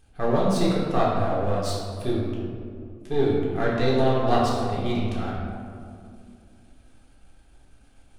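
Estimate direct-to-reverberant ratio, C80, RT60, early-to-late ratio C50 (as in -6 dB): -5.5 dB, 2.0 dB, 2.3 s, 0.0 dB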